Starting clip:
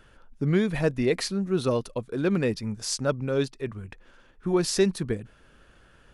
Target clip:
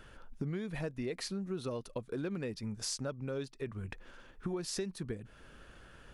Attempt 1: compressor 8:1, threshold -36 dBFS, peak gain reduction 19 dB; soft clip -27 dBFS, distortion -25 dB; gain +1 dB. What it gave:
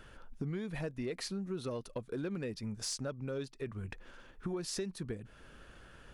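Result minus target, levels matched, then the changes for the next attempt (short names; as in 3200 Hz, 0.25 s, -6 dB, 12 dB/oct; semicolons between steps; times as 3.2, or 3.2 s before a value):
soft clip: distortion +17 dB
change: soft clip -17.5 dBFS, distortion -42 dB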